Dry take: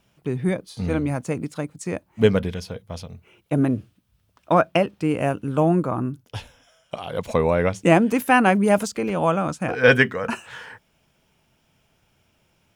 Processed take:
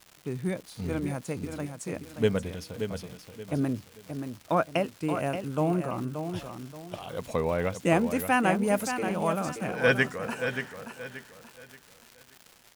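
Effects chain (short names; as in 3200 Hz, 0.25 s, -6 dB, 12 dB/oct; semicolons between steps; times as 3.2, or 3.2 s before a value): high shelf 8000 Hz +8 dB; crackle 300/s -30 dBFS; feedback echo 0.578 s, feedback 32%, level -8 dB; gain -8 dB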